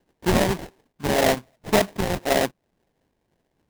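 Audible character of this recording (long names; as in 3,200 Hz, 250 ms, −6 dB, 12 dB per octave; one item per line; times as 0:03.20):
phaser sweep stages 6, 1.8 Hz, lowest notch 430–1,300 Hz
aliases and images of a low sample rate 1,300 Hz, jitter 20%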